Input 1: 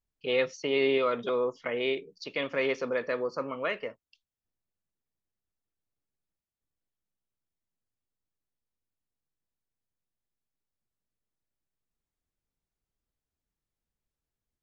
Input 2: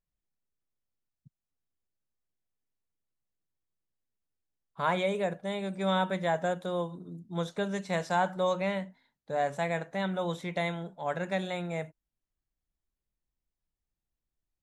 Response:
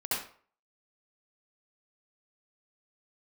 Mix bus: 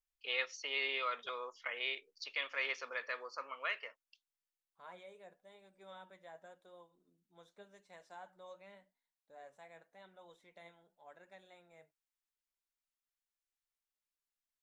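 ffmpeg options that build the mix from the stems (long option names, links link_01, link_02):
-filter_complex "[0:a]highpass=1200,volume=-3dB[link_01];[1:a]equalizer=frequency=150:width_type=o:width=1.2:gain=-13.5,flanger=delay=0.9:depth=6.5:regen=65:speed=0.88:shape=triangular,volume=-7dB,afade=type=out:start_time=2.49:duration=0.3:silence=0.223872[link_02];[link_01][link_02]amix=inputs=2:normalize=0"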